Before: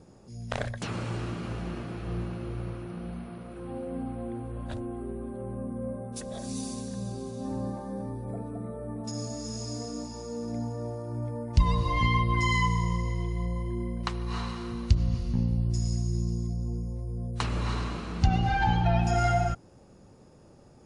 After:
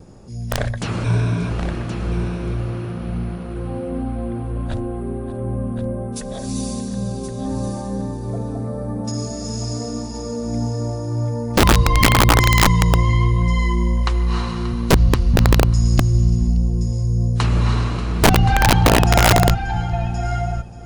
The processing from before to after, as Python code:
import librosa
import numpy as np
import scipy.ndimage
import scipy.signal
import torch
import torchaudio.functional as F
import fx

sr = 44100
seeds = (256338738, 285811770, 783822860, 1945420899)

p1 = fx.ripple_eq(x, sr, per_octave=1.6, db=13, at=(1.04, 1.5))
p2 = p1 + fx.echo_single(p1, sr, ms=584, db=-16.0, dry=0)
p3 = fx.vibrato(p2, sr, rate_hz=0.43, depth_cents=6.0)
p4 = p3 + 10.0 ** (-9.0 / 20.0) * np.pad(p3, (int(1073 * sr / 1000.0), 0))[:len(p3)]
p5 = 10.0 ** (-18.5 / 20.0) * np.tanh(p4 / 10.0 ** (-18.5 / 20.0))
p6 = p4 + (p5 * librosa.db_to_amplitude(-3.0))
p7 = fx.low_shelf(p6, sr, hz=82.0, db=10.0)
p8 = (np.mod(10.0 ** (9.5 / 20.0) * p7 + 1.0, 2.0) - 1.0) / 10.0 ** (9.5 / 20.0)
y = p8 * librosa.db_to_amplitude(3.5)